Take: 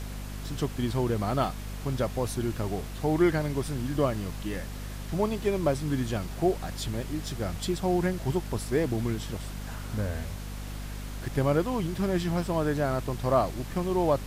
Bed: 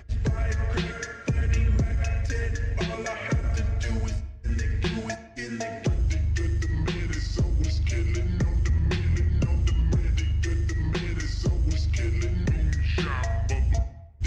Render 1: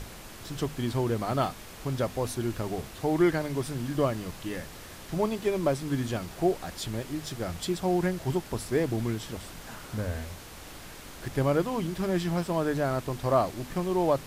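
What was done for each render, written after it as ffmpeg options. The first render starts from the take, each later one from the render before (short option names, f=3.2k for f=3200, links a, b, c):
-af "bandreject=f=50:t=h:w=6,bandreject=f=100:t=h:w=6,bandreject=f=150:t=h:w=6,bandreject=f=200:t=h:w=6,bandreject=f=250:t=h:w=6"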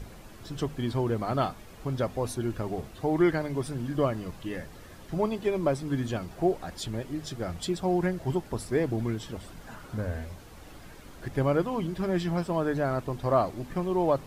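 -af "afftdn=nr=9:nf=-45"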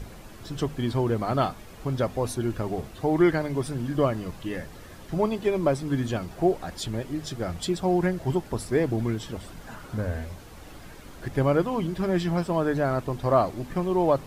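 -af "volume=3dB"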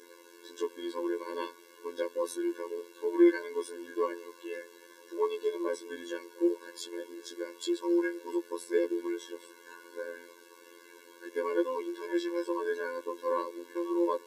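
-af "afftfilt=real='hypot(re,im)*cos(PI*b)':imag='0':win_size=2048:overlap=0.75,afftfilt=real='re*eq(mod(floor(b*sr/1024/290),2),1)':imag='im*eq(mod(floor(b*sr/1024/290),2),1)':win_size=1024:overlap=0.75"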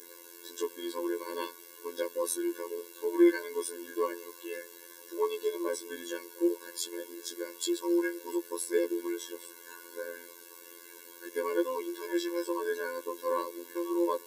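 -af "aemphasis=mode=production:type=50fm"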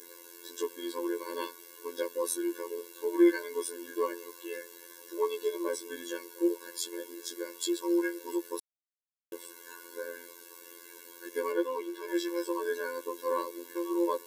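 -filter_complex "[0:a]asettb=1/sr,asplit=3[a][b][c];[a]atrim=end=11.524[d];[b]atrim=start=11.52:end=12.08,asetpts=PTS-STARTPTS,afade=t=in:d=0.004:c=qsin,afade=t=out:st=0.556:d=0.004:c=qsin,bass=f=250:g=-5,treble=f=4k:g=-6[e];[c]atrim=start=12.076[f];[d][e]acrossfade=d=0.004:c1=hsin:c2=qsin[g];[g][f]acrossfade=d=0.004:c1=qsin:c2=hsin,asplit=3[h][i][j];[h]atrim=end=8.6,asetpts=PTS-STARTPTS,afade=t=out:st=8.596:d=0.004:c=hsin[k];[i]atrim=start=8.6:end=9.32,asetpts=PTS-STARTPTS,volume=0[l];[j]atrim=start=9.32,asetpts=PTS-STARTPTS,afade=t=in:d=0.004:c=hsin[m];[k][l][m]concat=n=3:v=0:a=1"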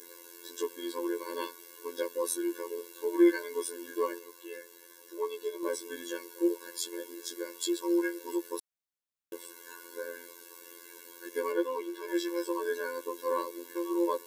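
-filter_complex "[0:a]asplit=3[a][b][c];[a]atrim=end=4.192[d];[b]atrim=start=4.188:end=5.632,asetpts=PTS-STARTPTS,volume=-4dB[e];[c]atrim=start=5.628[f];[d][e]acrossfade=d=0.004:c1=hsin:c2=hsin[g];[g][f]acrossfade=d=0.004:c1=hsin:c2=hsin"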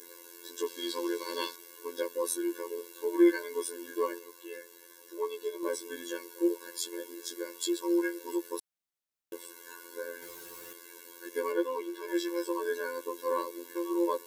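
-filter_complex "[0:a]asettb=1/sr,asplit=3[a][b][c];[a]atrim=end=0.664[d];[b]atrim=start=0.66:end=1.56,asetpts=PTS-STARTPTS,afade=t=in:d=0.004:c=qsin,afade=t=out:st=0.896:d=0.004:c=qsin,equalizer=f=4.4k:t=o:w=1.6:g=9.5[e];[c]atrim=start=1.556[f];[d][e]acrossfade=d=0.004:c1=hsin:c2=qsin[g];[g][f]acrossfade=d=0.004:c1=qsin:c2=hsin,asettb=1/sr,asplit=3[h][i][j];[h]atrim=end=10.224[k];[i]atrim=start=10.22:end=10.73,asetpts=PTS-STARTPTS,afade=t=in:d=0.004:c=qsin,afade=t=out:st=0.506:d=0.004:c=qsin,aeval=exprs='val(0)+0.5*0.00473*sgn(val(0))':c=same[l];[j]atrim=start=10.726[m];[k][l]acrossfade=d=0.004:c1=hsin:c2=qsin[n];[n][m]acrossfade=d=0.004:c1=qsin:c2=hsin"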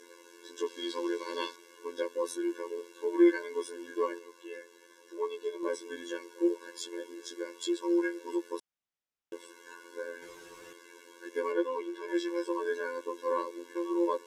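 -af "lowpass=5.7k,equalizer=f=4.3k:w=4.6:g=-6.5"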